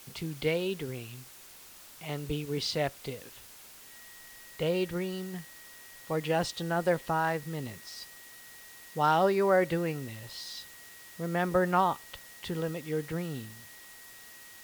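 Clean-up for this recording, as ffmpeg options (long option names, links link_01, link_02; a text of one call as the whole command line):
ffmpeg -i in.wav -af "adeclick=threshold=4,bandreject=frequency=1900:width=30,afwtdn=0.0028" out.wav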